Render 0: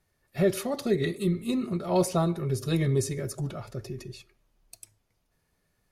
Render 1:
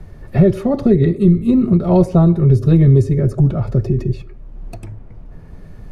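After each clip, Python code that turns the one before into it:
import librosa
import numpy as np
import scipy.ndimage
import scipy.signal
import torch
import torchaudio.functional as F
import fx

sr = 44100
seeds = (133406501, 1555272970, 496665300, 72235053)

y = fx.tilt_eq(x, sr, slope=-4.5)
y = fx.band_squash(y, sr, depth_pct=70)
y = F.gain(torch.from_numpy(y), 5.0).numpy()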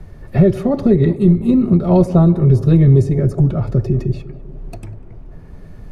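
y = fx.echo_tape(x, sr, ms=196, feedback_pct=86, wet_db=-15.0, lp_hz=1100.0, drive_db=7.0, wow_cents=18)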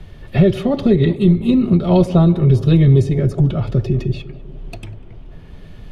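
y = fx.peak_eq(x, sr, hz=3200.0, db=15.0, octaves=0.84)
y = F.gain(torch.from_numpy(y), -1.0).numpy()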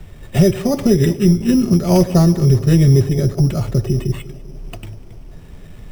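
y = np.repeat(x[::8], 8)[:len(x)]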